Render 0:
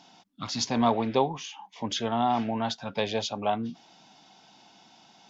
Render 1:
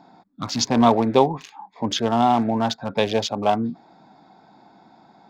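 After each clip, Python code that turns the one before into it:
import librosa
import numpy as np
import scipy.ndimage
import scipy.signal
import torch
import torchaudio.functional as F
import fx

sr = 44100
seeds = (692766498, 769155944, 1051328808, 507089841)

y = fx.wiener(x, sr, points=15)
y = fx.peak_eq(y, sr, hz=330.0, db=2.0, octaves=0.77)
y = y * librosa.db_to_amplitude(7.5)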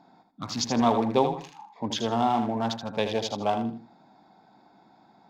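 y = fx.echo_feedback(x, sr, ms=79, feedback_pct=27, wet_db=-8.0)
y = y * librosa.db_to_amplitude(-6.5)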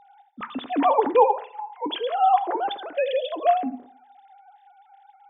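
y = fx.sine_speech(x, sr)
y = fx.rev_fdn(y, sr, rt60_s=0.63, lf_ratio=0.9, hf_ratio=0.35, size_ms=40.0, drr_db=13.0)
y = y * librosa.db_to_amplitude(3.5)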